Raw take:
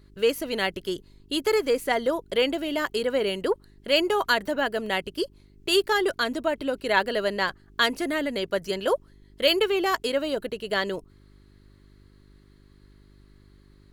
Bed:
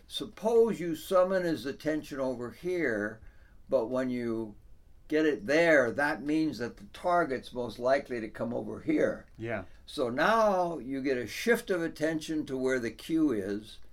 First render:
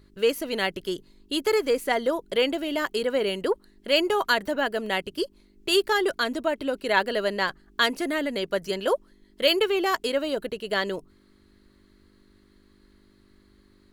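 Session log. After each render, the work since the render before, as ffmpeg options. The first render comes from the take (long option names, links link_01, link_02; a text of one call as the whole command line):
ffmpeg -i in.wav -af "bandreject=frequency=50:width_type=h:width=4,bandreject=frequency=100:width_type=h:width=4,bandreject=frequency=150:width_type=h:width=4" out.wav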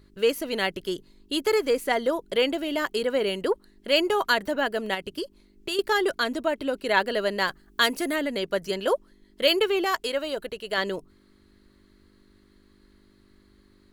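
ffmpeg -i in.wav -filter_complex "[0:a]asettb=1/sr,asplit=3[link_01][link_02][link_03];[link_01]atrim=end=4.944[link_04];[link_02]atrim=start=4.94:end=5.79,asetpts=PTS-STARTPTS,afade=type=in:duration=0.004:curve=qsin,afade=type=out:start_time=0.846:duration=0.004:curve=qsin,acompressor=threshold=-26dB:ratio=6:attack=3.2:release=140:knee=1:detection=peak[link_05];[link_03]atrim=start=5.786[link_06];[link_04][link_05]acrossfade=duration=0.004:curve1=hsin:curve2=qsin[link_07];[link_07][link_06]acrossfade=duration=0.004:curve1=qsin:curve2=hsin,asettb=1/sr,asplit=3[link_08][link_09][link_10];[link_08]atrim=end=7.384[link_11];[link_09]atrim=start=7.38:end=8.16,asetpts=PTS-STARTPTS,afade=type=in:duration=0.004:curve=qsin,afade=type=out:start_time=0.776:duration=0.004:curve=qsin,highshelf=frequency=8800:gain=10[link_12];[link_10]atrim=start=8.156[link_13];[link_11][link_12]acrossfade=duration=0.004:curve1=hsin:curve2=qsin[link_14];[link_14][link_13]acrossfade=duration=0.004:curve1=qsin:curve2=hsin,asettb=1/sr,asplit=3[link_15][link_16][link_17];[link_15]atrim=end=9.844[link_18];[link_16]atrim=start=9.84:end=10.78,asetpts=PTS-STARTPTS,afade=type=in:duration=0.004:curve=qsin,afade=type=out:start_time=0.936:duration=0.004:curve=qsin,equalizer=frequency=230:width=0.73:gain=-6.5[link_19];[link_17]atrim=start=10.776[link_20];[link_18][link_19]acrossfade=duration=0.004:curve1=hsin:curve2=qsin[link_21];[link_21][link_20]acrossfade=duration=0.004:curve1=qsin:curve2=hsin" out.wav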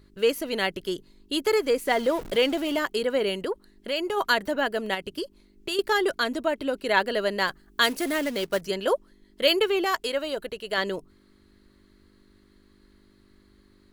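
ffmpeg -i in.wav -filter_complex "[0:a]asettb=1/sr,asplit=3[link_01][link_02][link_03];[link_01]atrim=end=1.874[link_04];[link_02]atrim=start=1.87:end=2.79,asetpts=PTS-STARTPTS,afade=type=in:duration=0.004:curve=qsin,afade=type=out:start_time=0.916:duration=0.004:curve=qsin,aeval=exprs='val(0)+0.5*0.0188*sgn(val(0))':channel_layout=same[link_05];[link_03]atrim=start=2.786[link_06];[link_04][link_05]acrossfade=duration=0.004:curve1=hsin:curve2=qsin[link_07];[link_07][link_06]acrossfade=duration=0.004:curve1=qsin:curve2=hsin,asplit=3[link_08][link_09][link_10];[link_08]afade=type=out:start_time=3.36:duration=0.02[link_11];[link_09]acompressor=threshold=-28dB:ratio=2:attack=3.2:release=140:knee=1:detection=peak,afade=type=in:start_time=3.36:duration=0.02,afade=type=out:start_time=4.16:duration=0.02[link_12];[link_10]afade=type=in:start_time=4.16:duration=0.02[link_13];[link_11][link_12][link_13]amix=inputs=3:normalize=0,asettb=1/sr,asplit=3[link_14][link_15][link_16];[link_14]atrim=end=7.874[link_17];[link_15]atrim=start=7.87:end=8.61,asetpts=PTS-STARTPTS,afade=type=in:duration=0.004:curve=qsin,afade=type=out:start_time=0.736:duration=0.004:curve=qsin,acrusher=bits=3:mode=log:mix=0:aa=0.000001[link_18];[link_16]atrim=start=8.606[link_19];[link_17][link_18]acrossfade=duration=0.004:curve1=hsin:curve2=qsin[link_20];[link_20][link_19]acrossfade=duration=0.004:curve1=qsin:curve2=hsin" out.wav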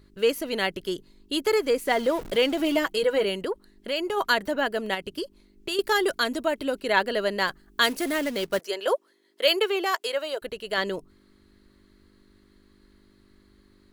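ffmpeg -i in.wav -filter_complex "[0:a]asettb=1/sr,asplit=3[link_01][link_02][link_03];[link_01]atrim=end=2.594[link_04];[link_02]atrim=start=2.59:end=3.25,asetpts=PTS-STARTPTS,afade=type=in:duration=0.004:curve=qsin,afade=type=out:start_time=0.656:duration=0.004:curve=qsin,aecho=1:1:6.2:0.72,atrim=end_sample=29106[link_05];[link_03]atrim=start=3.246[link_06];[link_04][link_05]acrossfade=duration=0.004:curve1=hsin:curve2=qsin[link_07];[link_07][link_06]acrossfade=duration=0.004:curve1=qsin:curve2=hsin,asettb=1/sr,asplit=3[link_08][link_09][link_10];[link_08]atrim=end=5.804[link_11];[link_09]atrim=start=5.8:end=6.8,asetpts=PTS-STARTPTS,afade=type=in:duration=0.004:curve=qsin,afade=type=out:start_time=0.996:duration=0.004:curve=qsin,highshelf=frequency=5200:gain=6[link_12];[link_10]atrim=start=6.796[link_13];[link_11][link_12]acrossfade=duration=0.004:curve1=hsin:curve2=qsin[link_14];[link_14][link_13]acrossfade=duration=0.004:curve1=qsin:curve2=hsin,asettb=1/sr,asplit=3[link_15][link_16][link_17];[link_15]atrim=end=8.594[link_18];[link_16]atrim=start=8.59:end=10.42,asetpts=PTS-STARTPTS,afade=type=in:duration=0.004:curve=qsin,afade=type=out:start_time=1.826:duration=0.004:curve=qsin,highpass=frequency=370:width=0.5412,highpass=frequency=370:width=1.3066[link_19];[link_17]atrim=start=10.416[link_20];[link_18][link_19]acrossfade=duration=0.004:curve1=hsin:curve2=qsin[link_21];[link_21][link_20]acrossfade=duration=0.004:curve1=qsin:curve2=hsin" out.wav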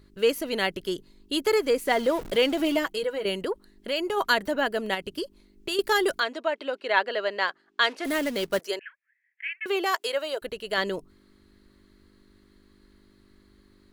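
ffmpeg -i in.wav -filter_complex "[0:a]asplit=3[link_01][link_02][link_03];[link_01]afade=type=out:start_time=6.19:duration=0.02[link_04];[link_02]highpass=480,lowpass=3900,afade=type=in:start_time=6.19:duration=0.02,afade=type=out:start_time=8.04:duration=0.02[link_05];[link_03]afade=type=in:start_time=8.04:duration=0.02[link_06];[link_04][link_05][link_06]amix=inputs=3:normalize=0,asettb=1/sr,asplit=3[link_07][link_08][link_09];[link_07]atrim=end=8.794[link_10];[link_08]atrim=start=8.79:end=9.66,asetpts=PTS-STARTPTS,afade=type=in:duration=0.004:curve=qsin,afade=type=out:start_time=0.866:duration=0.004:curve=qsin,asuperpass=centerf=2000:order=8:qfactor=2.2[link_11];[link_09]atrim=start=9.656[link_12];[link_10][link_11]acrossfade=duration=0.004:curve1=hsin:curve2=qsin[link_13];[link_13][link_12]acrossfade=duration=0.004:curve1=qsin:curve2=hsin,asplit=2[link_14][link_15];[link_14]atrim=end=3.25,asetpts=PTS-STARTPTS,afade=type=out:start_time=2.64:duration=0.61:silence=0.334965[link_16];[link_15]atrim=start=3.25,asetpts=PTS-STARTPTS,afade=type=in:duration=0.004:curve=hsin:silence=0.334965[link_17];[link_16][link_17]concat=n=2:v=0:a=1" out.wav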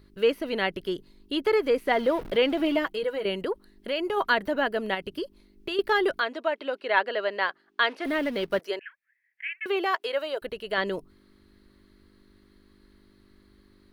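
ffmpeg -i in.wav -filter_complex "[0:a]acrossover=split=3800[link_01][link_02];[link_02]acompressor=threshold=-52dB:ratio=4:attack=1:release=60[link_03];[link_01][link_03]amix=inputs=2:normalize=0,equalizer=frequency=7200:width=2.8:gain=-7" out.wav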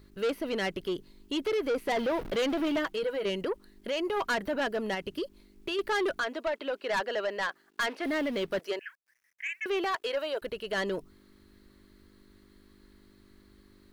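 ffmpeg -i in.wav -af "asoftclip=type=tanh:threshold=-24.5dB,acrusher=bits=11:mix=0:aa=0.000001" out.wav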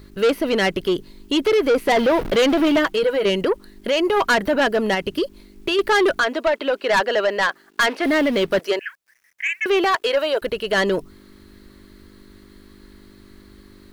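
ffmpeg -i in.wav -af "volume=12dB" out.wav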